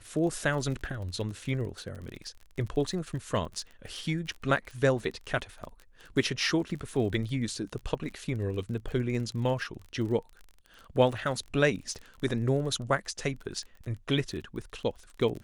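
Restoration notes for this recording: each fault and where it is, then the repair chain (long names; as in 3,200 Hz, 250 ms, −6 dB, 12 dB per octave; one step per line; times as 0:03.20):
surface crackle 27 per second −37 dBFS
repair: click removal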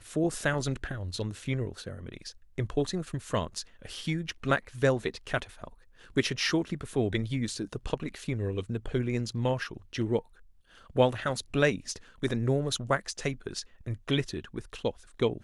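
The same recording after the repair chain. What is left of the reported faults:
none of them is left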